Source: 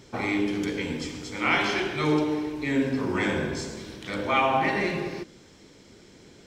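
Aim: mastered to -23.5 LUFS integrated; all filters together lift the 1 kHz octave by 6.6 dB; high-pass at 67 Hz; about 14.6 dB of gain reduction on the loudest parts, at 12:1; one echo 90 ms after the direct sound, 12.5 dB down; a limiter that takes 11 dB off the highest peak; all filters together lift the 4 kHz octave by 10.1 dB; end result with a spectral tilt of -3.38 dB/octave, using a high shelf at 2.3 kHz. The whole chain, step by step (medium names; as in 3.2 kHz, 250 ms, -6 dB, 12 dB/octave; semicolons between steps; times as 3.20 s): high-pass 67 Hz; peaking EQ 1 kHz +7 dB; treble shelf 2.3 kHz +5.5 dB; peaking EQ 4 kHz +8 dB; compression 12:1, threshold -27 dBFS; peak limiter -27 dBFS; delay 90 ms -12.5 dB; trim +12 dB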